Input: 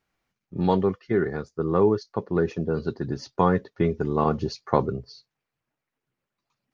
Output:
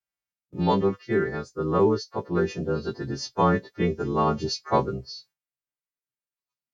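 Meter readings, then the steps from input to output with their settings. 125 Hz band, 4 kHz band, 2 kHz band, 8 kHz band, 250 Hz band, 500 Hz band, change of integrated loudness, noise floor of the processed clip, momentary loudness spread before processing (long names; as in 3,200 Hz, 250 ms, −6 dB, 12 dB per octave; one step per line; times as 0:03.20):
−1.0 dB, +7.0 dB, +2.0 dB, can't be measured, −1.0 dB, −1.0 dB, −0.5 dB, below −85 dBFS, 9 LU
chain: every partial snapped to a pitch grid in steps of 2 semitones
noise gate with hold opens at −40 dBFS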